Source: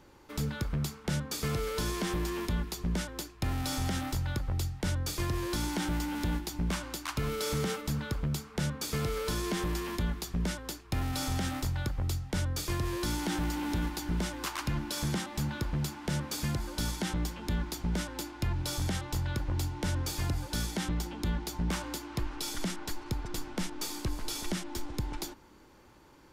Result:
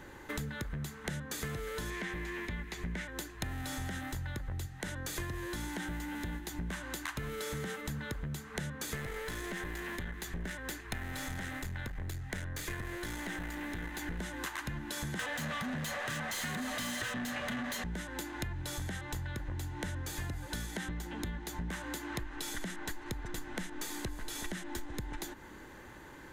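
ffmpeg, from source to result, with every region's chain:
-filter_complex "[0:a]asettb=1/sr,asplit=3[s0][s1][s2];[s0]atrim=end=1.904[s3];[s1]atrim=start=1.9:end=3.11,asetpts=PTS-STARTPTS,afade=t=in:d=0.004:c=qsin,afade=t=out:st=1.206:d=0.004:c=qsin,acrossover=split=6800[s4][s5];[s5]acompressor=threshold=0.00224:ratio=4:attack=1:release=60[s6];[s4][s6]amix=inputs=2:normalize=0,equalizer=f=2200:t=o:w=0.51:g=9[s7];[s2]atrim=start=3.106[s8];[s3][s7]acrossfade=d=0.004:c1=hsin:c2=qsin[s9];[s9][s8]acrossfade=d=0.004:c1=qsin:c2=hsin,asettb=1/sr,asplit=3[s10][s11][s12];[s10]atrim=end=4.664[s13];[s11]atrim=start=4.66:end=5.16,asetpts=PTS-STARTPTS,afade=t=in:d=0.004:c=qsin,afade=t=out:st=0.496:d=0.004:c=qsin,equalizer=f=65:w=1.2:g=-15,acompressor=threshold=0.0112:ratio=1.5:attack=3.2:release=140:knee=1:detection=peak[s14];[s12]atrim=start=5.156[s15];[s13][s14]acrossfade=d=0.004:c1=hsin:c2=qsin[s16];[s16][s15]acrossfade=d=0.004:c1=qsin:c2=hsin,asettb=1/sr,asplit=3[s17][s18][s19];[s17]atrim=end=8.954[s20];[s18]atrim=start=8.95:end=14.19,asetpts=PTS-STARTPTS,afade=t=in:d=0.004:c=qsin,afade=t=out:st=5.236:d=0.004:c=qsin,aeval=exprs='clip(val(0),-1,0.0158)':c=same,equalizer=f=2100:t=o:w=0.81:g=4.5[s21];[s19]atrim=start=14.186[s22];[s20][s21]acrossfade=d=0.004:c1=hsin:c2=qsin[s23];[s23][s22]acrossfade=d=0.004:c1=qsin:c2=hsin,asettb=1/sr,asplit=3[s24][s25][s26];[s24]atrim=end=15.194[s27];[s25]atrim=start=15.19:end=17.84,asetpts=PTS-STARTPTS,afade=t=in:d=0.004:c=qsin,afade=t=out:st=2.646:d=0.004:c=qsin,afreqshift=-300,asplit=2[s28][s29];[s29]highpass=f=720:p=1,volume=28.2,asoftclip=type=tanh:threshold=0.126[s30];[s28][s30]amix=inputs=2:normalize=0,lowpass=f=6900:p=1,volume=0.501[s31];[s26]atrim=start=17.836[s32];[s27][s31]acrossfade=d=0.004:c1=hsin:c2=qsin[s33];[s33][s32]acrossfade=d=0.004:c1=qsin:c2=hsin,superequalizer=11b=2.51:14b=0.501,acompressor=threshold=0.00794:ratio=12,volume=2.11"

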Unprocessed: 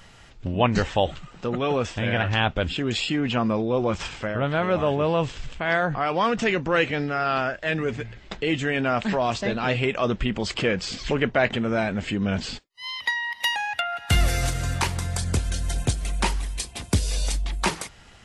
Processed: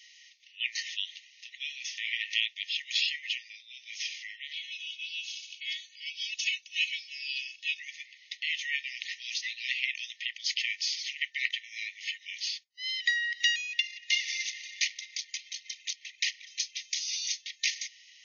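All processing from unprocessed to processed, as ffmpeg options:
-filter_complex "[0:a]asettb=1/sr,asplit=3[s0][s1][s2];[s0]atrim=end=4.534[s3];[s1]atrim=start=4.53:end=7.8,asetpts=PTS-STARTPTS,afade=t=in:d=0.004:c=qsin,afade=t=out:st=3.266:d=0.004:c=qsin,asuperpass=centerf=4600:order=12:qfactor=0.78,aecho=1:1:2.7:0.94,atrim=end_sample=144207[s4];[s2]atrim=start=7.796[s5];[s3][s4]acrossfade=d=0.004:c1=hsin:c2=qsin[s6];[s6][s5]acrossfade=d=0.004:c1=qsin:c2=hsin,asettb=1/sr,asplit=3[s7][s8][s9];[s7]atrim=end=13.794[s10];[s8]atrim=start=13.79:end=16.47,asetpts=PTS-STARTPTS,afade=t=in:d=0.004:c=qsin,afade=t=out:st=2.676:d=0.004:c=qsin,aphaser=in_gain=1:out_gain=1:delay=4.8:decay=0.43:speed=1.6:type=sinusoidal,adynamicsmooth=sensitivity=6:basefreq=1800[s11];[s9]atrim=start=16.466[s12];[s10][s11]acrossfade=d=0.004:c1=hsin:c2=qsin[s13];[s13][s12]acrossfade=d=0.004:c1=qsin:c2=hsin,afftfilt=real='re*between(b*sr/4096,1800,6700)':imag='im*between(b*sr/4096,1800,6700)':win_size=4096:overlap=0.75,aemphasis=mode=production:type=50fm,volume=0.708"

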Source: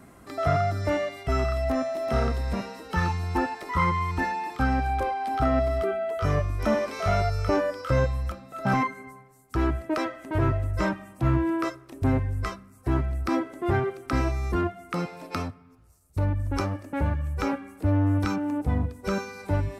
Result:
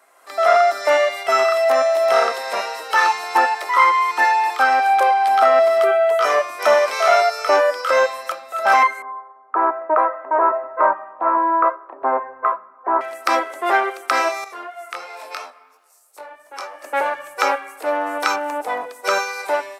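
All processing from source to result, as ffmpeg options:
-filter_complex "[0:a]asettb=1/sr,asplit=3[s0][s1][s2];[s0]atrim=end=9.024[s3];[s1]atrim=start=9.02:end=13.01,asetpts=PTS-STARTPTS,afade=t=in:d=0.004:c=qsin,afade=t=out:st=3.986:d=0.004:c=qsin,lowpass=f=1400:w=0.5412,lowpass=f=1400:w=1.3066,equalizer=f=1000:w=3.9:g=7[s4];[s2]atrim=start=13.006[s5];[s3][s4]acrossfade=d=0.004:c1=hsin:c2=qsin[s6];[s6][s5]acrossfade=d=0.004:c1=qsin:c2=hsin,asettb=1/sr,asplit=3[s7][s8][s9];[s7]atrim=end=14.444[s10];[s8]atrim=start=14.44:end=16.83,asetpts=PTS-STARTPTS,afade=t=in:d=0.004:c=qsin,afade=t=out:st=2.386:d=0.004:c=qsin,acompressor=threshold=0.01:ratio=2:attack=3.2:release=140:knee=1:detection=peak,highpass=f=310:p=1,flanger=delay=20:depth=2.7:speed=2.9[s11];[s9]atrim=start=16.826[s12];[s10][s11]acrossfade=d=0.004:c1=hsin:c2=qsin[s13];[s13][s12]acrossfade=d=0.004:c1=qsin:c2=hsin,highpass=f=560:w=0.5412,highpass=f=560:w=1.3066,dynaudnorm=f=130:g=5:m=5.31"

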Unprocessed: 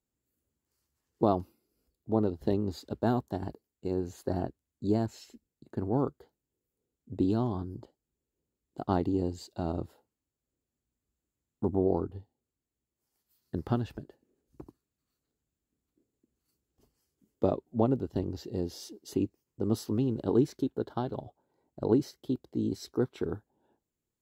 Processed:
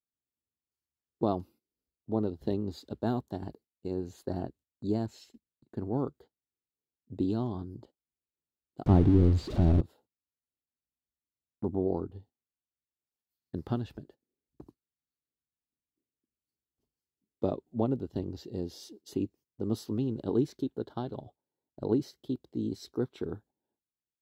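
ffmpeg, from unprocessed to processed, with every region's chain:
-filter_complex "[0:a]asettb=1/sr,asplit=3[s0][s1][s2];[s0]atrim=end=8.864[s3];[s1]atrim=start=8.86:end=9.81,asetpts=PTS-STARTPTS,afade=t=in:d=0.004:c=qsin,afade=t=out:st=0.946:d=0.004:c=qsin,aeval=exprs='val(0)+0.5*0.0282*sgn(val(0))':c=same,aemphasis=mode=reproduction:type=riaa[s4];[s2]atrim=start=9.806[s5];[s3][s4]acrossfade=d=0.004:c1=hsin:c2=qsin[s6];[s6][s5]acrossfade=d=0.004:c1=qsin:c2=hsin,equalizer=f=3700:t=o:w=0.75:g=5,agate=range=0.2:threshold=0.00251:ratio=16:detection=peak,equalizer=f=200:t=o:w=3:g=3.5,volume=0.531"

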